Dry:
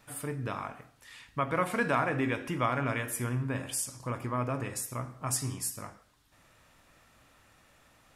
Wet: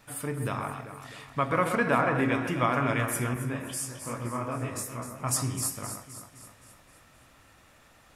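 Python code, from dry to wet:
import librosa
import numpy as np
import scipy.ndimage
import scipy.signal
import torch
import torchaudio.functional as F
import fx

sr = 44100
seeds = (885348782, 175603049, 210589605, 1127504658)

y = fx.high_shelf(x, sr, hz=6100.0, db=-11.0, at=(1.75, 2.28))
y = fx.echo_alternate(y, sr, ms=130, hz=2000.0, feedback_pct=72, wet_db=-6.5)
y = fx.detune_double(y, sr, cents=48, at=(3.34, 5.2))
y = y * librosa.db_to_amplitude(3.0)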